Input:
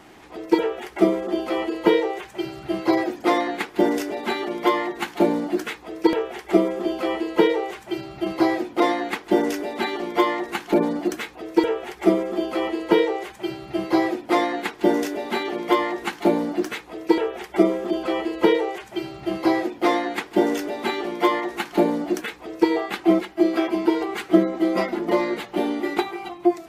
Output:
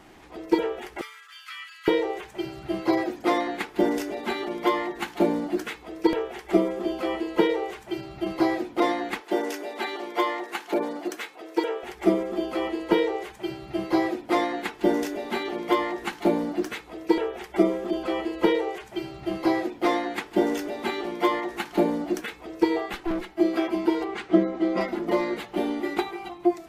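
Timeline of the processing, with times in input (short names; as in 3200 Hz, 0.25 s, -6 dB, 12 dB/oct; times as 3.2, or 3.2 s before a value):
1.01–1.88 steep high-pass 1300 Hz 48 dB/oct
9.2–11.83 HPF 390 Hz
22.93–23.37 tube stage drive 21 dB, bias 0.45
24.04–24.81 air absorption 76 m
whole clip: low shelf 64 Hz +10 dB; de-hum 438.1 Hz, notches 32; gain -3.5 dB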